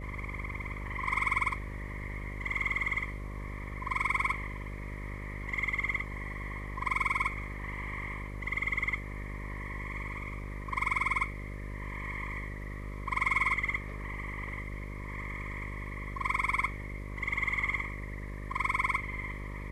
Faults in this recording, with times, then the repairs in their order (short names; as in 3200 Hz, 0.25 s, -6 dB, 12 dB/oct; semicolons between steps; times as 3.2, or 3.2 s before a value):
buzz 50 Hz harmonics 12 -40 dBFS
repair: de-hum 50 Hz, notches 12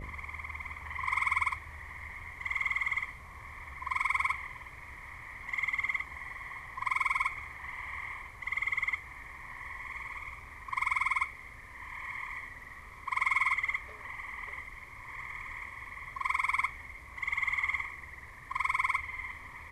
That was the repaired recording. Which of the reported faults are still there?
none